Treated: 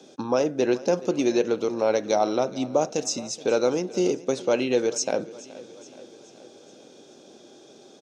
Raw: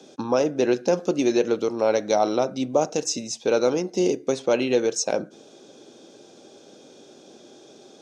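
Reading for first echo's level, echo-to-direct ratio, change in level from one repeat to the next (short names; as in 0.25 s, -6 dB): -19.0 dB, -17.5 dB, -5.0 dB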